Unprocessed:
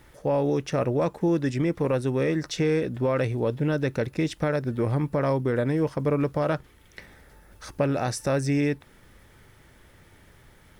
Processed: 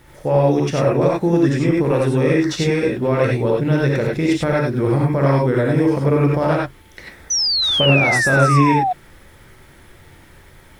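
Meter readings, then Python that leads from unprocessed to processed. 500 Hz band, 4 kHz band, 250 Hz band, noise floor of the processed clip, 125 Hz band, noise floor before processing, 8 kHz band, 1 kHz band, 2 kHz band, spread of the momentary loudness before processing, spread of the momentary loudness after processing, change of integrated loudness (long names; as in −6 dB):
+8.0 dB, +20.5 dB, +8.5 dB, −46 dBFS, +9.5 dB, −55 dBFS, +14.0 dB, +12.0 dB, +14.5 dB, 3 LU, 6 LU, +9.0 dB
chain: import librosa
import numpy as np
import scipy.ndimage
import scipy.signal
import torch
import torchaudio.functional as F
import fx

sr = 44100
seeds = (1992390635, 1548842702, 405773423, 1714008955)

y = fx.rev_gated(x, sr, seeds[0], gate_ms=120, shape='rising', drr_db=-3.0)
y = fx.spec_paint(y, sr, seeds[1], shape='fall', start_s=7.3, length_s=1.63, low_hz=710.0, high_hz=6100.0, level_db=-22.0)
y = y * 10.0 ** (4.0 / 20.0)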